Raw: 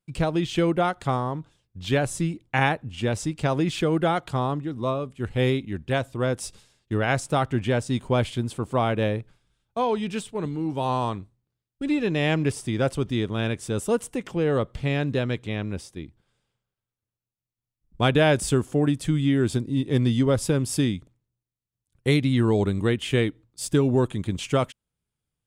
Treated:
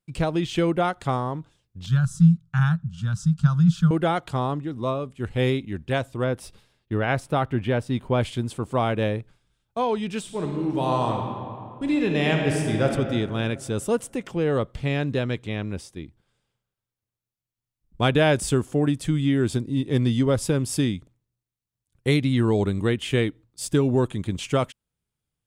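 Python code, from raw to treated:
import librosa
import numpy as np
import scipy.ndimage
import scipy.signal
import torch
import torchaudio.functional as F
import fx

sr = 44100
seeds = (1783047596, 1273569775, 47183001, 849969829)

y = fx.curve_eq(x, sr, hz=(100.0, 170.0, 320.0, 520.0, 860.0, 1400.0, 2100.0, 3300.0, 6000.0, 10000.0), db=(0, 13, -30, -25, -15, 4, -22, -8, -3, -9), at=(1.86, 3.91))
y = fx.peak_eq(y, sr, hz=7300.0, db=-12.0, octaves=1.2, at=(6.24, 8.21))
y = fx.reverb_throw(y, sr, start_s=10.19, length_s=2.67, rt60_s=2.3, drr_db=1.5)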